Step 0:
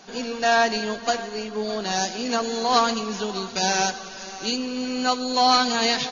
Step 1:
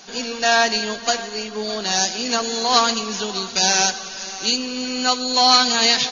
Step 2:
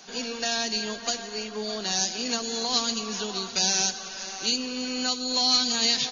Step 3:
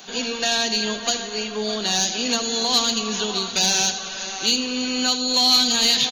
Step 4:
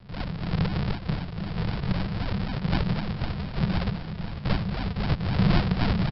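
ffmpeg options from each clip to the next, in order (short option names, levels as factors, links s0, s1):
-af "highshelf=f=2100:g=9.5"
-filter_complex "[0:a]acrossover=split=380|3000[s0][s1][s2];[s1]acompressor=threshold=0.0398:ratio=6[s3];[s0][s3][s2]amix=inputs=3:normalize=0,volume=0.562"
-af "aecho=1:1:80:0.211,aexciter=amount=1.6:drive=1.2:freq=2900,asoftclip=type=tanh:threshold=0.211,volume=2"
-af "aresample=11025,acrusher=samples=29:mix=1:aa=0.000001:lfo=1:lforange=29:lforate=3.9,aresample=44100,afreqshift=-210,aecho=1:1:972:0.335,volume=0.668"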